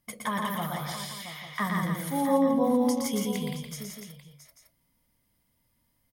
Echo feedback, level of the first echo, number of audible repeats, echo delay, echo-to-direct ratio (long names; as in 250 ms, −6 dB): repeats not evenly spaced, −3.5 dB, 7, 117 ms, 0.5 dB